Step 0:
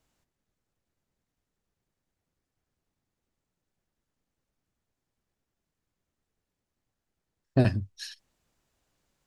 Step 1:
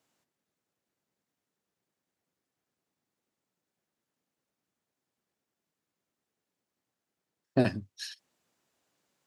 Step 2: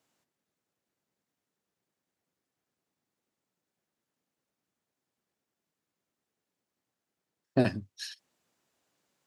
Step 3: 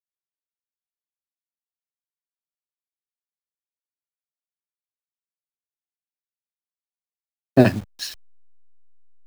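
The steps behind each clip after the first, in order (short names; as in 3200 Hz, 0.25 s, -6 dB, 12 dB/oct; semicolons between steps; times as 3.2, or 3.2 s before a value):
HPF 190 Hz 12 dB/oct
nothing audible
level-crossing sampler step -43.5 dBFS; three-band expander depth 40%; gain +8.5 dB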